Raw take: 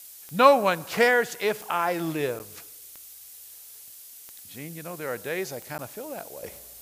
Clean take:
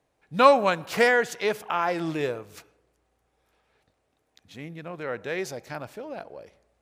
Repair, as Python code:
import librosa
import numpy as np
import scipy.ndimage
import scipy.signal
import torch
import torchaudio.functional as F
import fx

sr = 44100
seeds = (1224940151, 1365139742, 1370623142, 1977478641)

y = fx.fix_declick_ar(x, sr, threshold=10.0)
y = fx.fix_interpolate(y, sr, at_s=(2.39, 5.78), length_ms=9.8)
y = fx.noise_reduce(y, sr, print_start_s=3.75, print_end_s=4.25, reduce_db=26.0)
y = fx.fix_level(y, sr, at_s=6.43, step_db=-11.5)